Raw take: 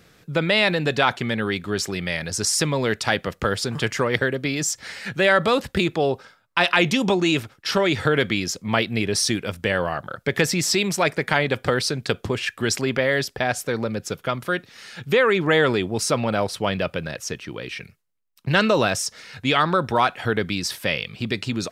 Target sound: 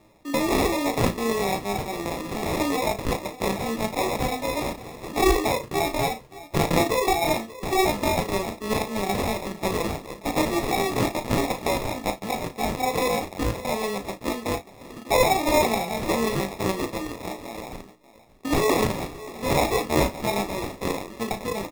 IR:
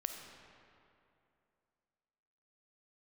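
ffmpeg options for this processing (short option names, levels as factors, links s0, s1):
-filter_complex "[0:a]flanger=delay=17:depth=3.2:speed=1.6,asplit=2[s0][s1];[s1]adelay=583.1,volume=0.141,highshelf=f=4000:g=-13.1[s2];[s0][s2]amix=inputs=2:normalize=0,asetrate=85689,aresample=44100,atempo=0.514651,acrusher=samples=29:mix=1:aa=0.000001,asplit=2[s3][s4];[s4]aecho=0:1:35|57:0.335|0.126[s5];[s3][s5]amix=inputs=2:normalize=0"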